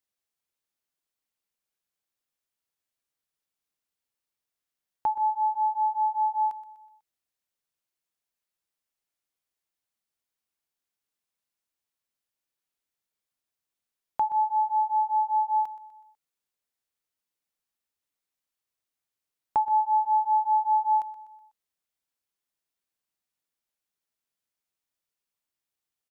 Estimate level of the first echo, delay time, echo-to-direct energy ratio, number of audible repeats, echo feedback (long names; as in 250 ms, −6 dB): −15.0 dB, 124 ms, −14.0 dB, 4, 47%